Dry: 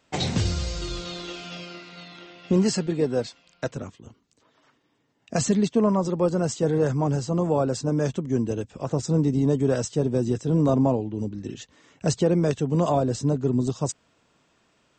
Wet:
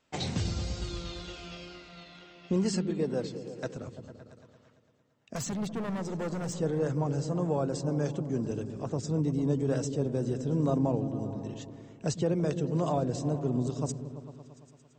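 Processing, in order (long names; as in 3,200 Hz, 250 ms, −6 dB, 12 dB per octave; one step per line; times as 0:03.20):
tape wow and flutter 26 cents
0:05.35–0:06.57: hard clipping −24 dBFS, distortion −13 dB
on a send: echo whose low-pass opens from repeat to repeat 113 ms, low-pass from 200 Hz, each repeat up 1 octave, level −6 dB
on the sum: level −7.5 dB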